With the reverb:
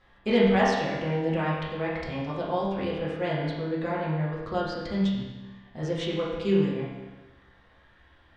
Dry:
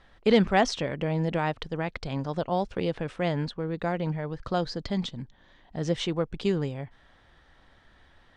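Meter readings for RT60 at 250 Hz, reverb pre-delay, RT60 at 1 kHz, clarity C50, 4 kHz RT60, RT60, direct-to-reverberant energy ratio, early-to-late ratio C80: 1.2 s, 5 ms, 1.2 s, 0.5 dB, 1.2 s, 1.2 s, -8.0 dB, 2.5 dB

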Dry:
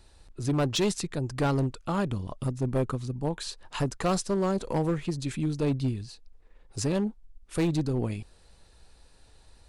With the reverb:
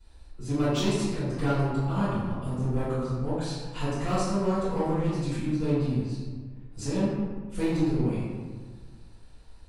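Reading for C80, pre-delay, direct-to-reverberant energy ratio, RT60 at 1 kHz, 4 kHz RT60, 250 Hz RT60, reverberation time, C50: 0.5 dB, 5 ms, -17.0 dB, 1.5 s, 0.80 s, 1.8 s, 1.6 s, -2.5 dB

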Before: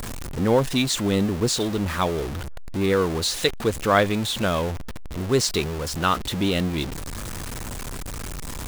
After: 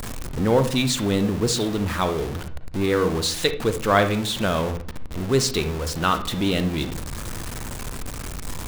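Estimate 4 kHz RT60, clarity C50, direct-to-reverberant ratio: 0.35 s, 10.5 dB, 9.0 dB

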